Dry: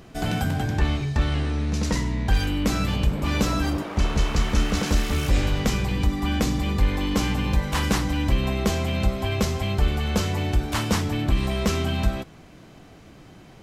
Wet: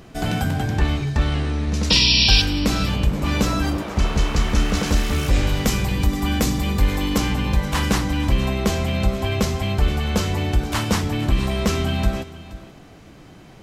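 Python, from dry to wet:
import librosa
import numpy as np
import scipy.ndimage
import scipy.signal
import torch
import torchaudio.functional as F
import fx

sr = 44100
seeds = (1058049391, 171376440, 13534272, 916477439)

p1 = fx.spec_paint(x, sr, seeds[0], shape='noise', start_s=1.9, length_s=0.52, low_hz=2300.0, high_hz=5700.0, level_db=-19.0)
p2 = fx.high_shelf(p1, sr, hz=7800.0, db=9.5, at=(5.49, 7.18))
p3 = p2 + fx.echo_single(p2, sr, ms=475, db=-17.0, dry=0)
y = p3 * 10.0 ** (2.5 / 20.0)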